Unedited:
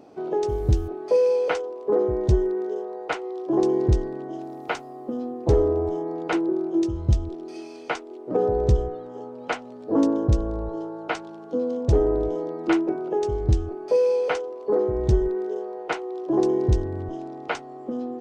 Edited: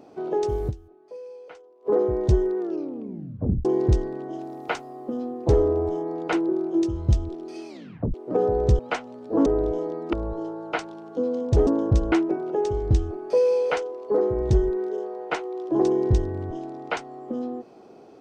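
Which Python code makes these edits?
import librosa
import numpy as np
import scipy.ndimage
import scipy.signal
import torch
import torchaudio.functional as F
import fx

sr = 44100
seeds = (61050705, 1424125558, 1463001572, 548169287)

y = fx.edit(x, sr, fx.fade_down_up(start_s=0.68, length_s=1.19, db=-20.5, fade_s=0.18, curve='exp'),
    fx.tape_stop(start_s=2.59, length_s=1.06),
    fx.tape_stop(start_s=7.68, length_s=0.46),
    fx.cut(start_s=8.79, length_s=0.58),
    fx.swap(start_s=10.04, length_s=0.45, other_s=12.03, other_length_s=0.67), tone=tone)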